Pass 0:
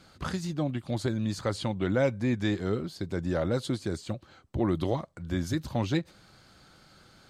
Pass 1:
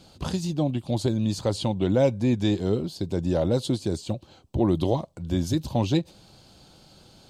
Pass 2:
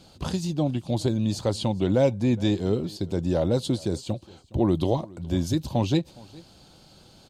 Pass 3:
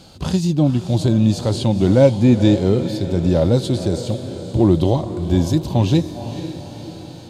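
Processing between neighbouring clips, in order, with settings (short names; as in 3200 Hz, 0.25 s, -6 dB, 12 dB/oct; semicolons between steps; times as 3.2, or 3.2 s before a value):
band shelf 1600 Hz -11 dB 1.1 oct; gain +5 dB
echo 0.415 s -23 dB
diffused feedback echo 0.488 s, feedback 57%, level -13 dB; harmonic-percussive split harmonic +8 dB; gain +2.5 dB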